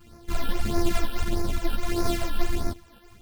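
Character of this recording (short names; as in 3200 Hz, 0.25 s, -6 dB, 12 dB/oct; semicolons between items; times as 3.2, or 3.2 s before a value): a buzz of ramps at a fixed pitch in blocks of 128 samples; phasing stages 12, 1.6 Hz, lowest notch 110–3100 Hz; tremolo saw up 5.7 Hz, depth 35%; a shimmering, thickened sound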